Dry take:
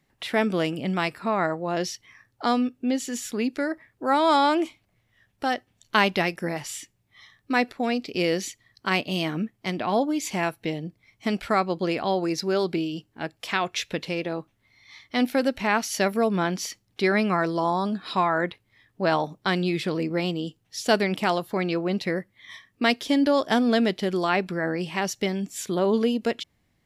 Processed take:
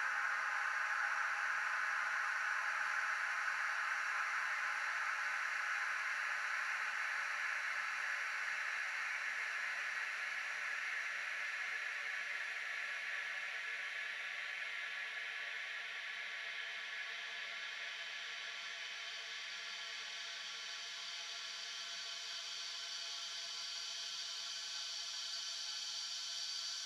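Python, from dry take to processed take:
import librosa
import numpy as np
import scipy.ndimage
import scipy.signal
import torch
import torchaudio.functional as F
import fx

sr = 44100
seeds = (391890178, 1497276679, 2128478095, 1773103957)

y = fx.filter_sweep_bandpass(x, sr, from_hz=930.0, to_hz=7100.0, start_s=15.39, end_s=17.08, q=4.7)
y = fx.tone_stack(y, sr, knobs='10-0-10')
y = fx.paulstretch(y, sr, seeds[0], factor=35.0, window_s=1.0, from_s=15.77)
y = F.gain(torch.from_numpy(y), 2.5).numpy()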